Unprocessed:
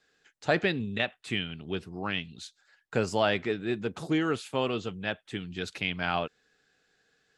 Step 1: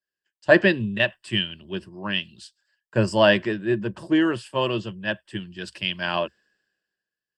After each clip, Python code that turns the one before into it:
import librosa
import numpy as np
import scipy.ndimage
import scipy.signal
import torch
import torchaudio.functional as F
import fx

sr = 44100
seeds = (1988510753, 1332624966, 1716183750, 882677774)

y = fx.ripple_eq(x, sr, per_octave=1.3, db=11)
y = fx.band_widen(y, sr, depth_pct=70)
y = y * 10.0 ** (3.5 / 20.0)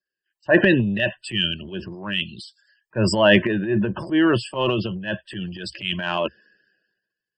y = fx.spec_topn(x, sr, count=64)
y = fx.transient(y, sr, attack_db=-7, sustain_db=9)
y = y * 10.0 ** (2.5 / 20.0)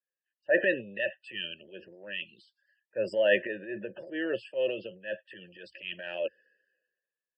y = fx.vowel_filter(x, sr, vowel='e')